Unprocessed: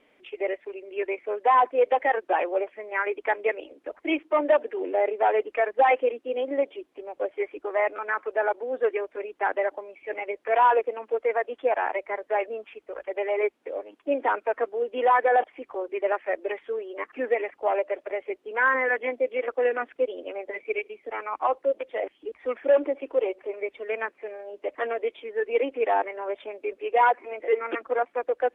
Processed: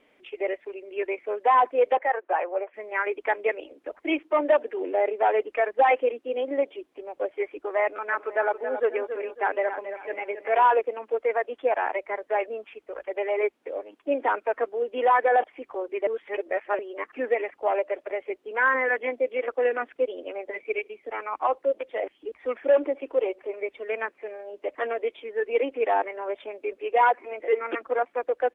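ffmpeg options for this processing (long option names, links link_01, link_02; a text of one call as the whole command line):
ffmpeg -i in.wav -filter_complex "[0:a]asettb=1/sr,asplit=3[link_01][link_02][link_03];[link_01]atrim=end=1.974[link_04];[link_02]atrim=start=1.97:end=2.74,asetpts=PTS-STARTPTS,afade=type=in:duration=0.004:curve=qsin,afade=type=out:start_time=0.766:duration=0.004:curve=qsin,acrossover=split=420 2400:gain=0.141 1 0.0631[link_05][link_06][link_07];[link_05][link_06][link_07]amix=inputs=3:normalize=0[link_08];[link_03]atrim=start=2.736[link_09];[link_04][link_08]acrossfade=duration=0.004:curve1=hsin:curve2=qsin[link_10];[link_10][link_09]acrossfade=duration=0.004:curve1=qsin:curve2=hsin,asplit=3[link_11][link_12][link_13];[link_11]afade=type=out:start_time=8.11:duration=0.02[link_14];[link_12]aecho=1:1:274|548|822:0.335|0.104|0.0322,afade=type=in:start_time=8.11:duration=0.02,afade=type=out:start_time=10.66:duration=0.02[link_15];[link_13]afade=type=in:start_time=10.66:duration=0.02[link_16];[link_14][link_15][link_16]amix=inputs=3:normalize=0,asplit=3[link_17][link_18][link_19];[link_17]atrim=end=16.072[link_20];[link_18]atrim=start=16.068:end=16.792,asetpts=PTS-STARTPTS,areverse[link_21];[link_19]atrim=start=16.788[link_22];[link_20][link_21]acrossfade=duration=0.004:curve1=hsin:curve2=hsin[link_23];[link_23][link_22]acrossfade=duration=0.004:curve1=hsin:curve2=hsin" out.wav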